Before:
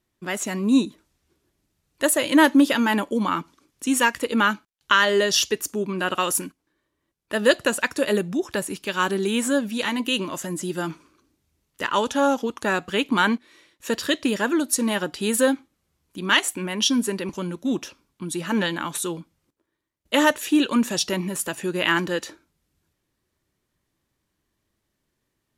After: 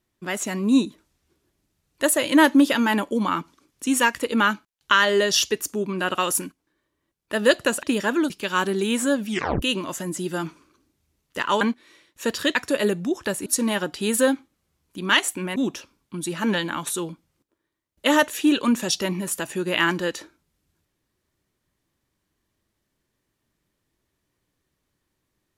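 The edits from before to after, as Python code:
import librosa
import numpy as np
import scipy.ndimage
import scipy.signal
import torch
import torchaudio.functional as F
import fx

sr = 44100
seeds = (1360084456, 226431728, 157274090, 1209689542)

y = fx.edit(x, sr, fx.swap(start_s=7.83, length_s=0.91, other_s=14.19, other_length_s=0.47),
    fx.tape_stop(start_s=9.73, length_s=0.33),
    fx.cut(start_s=12.05, length_s=1.2),
    fx.cut(start_s=16.76, length_s=0.88), tone=tone)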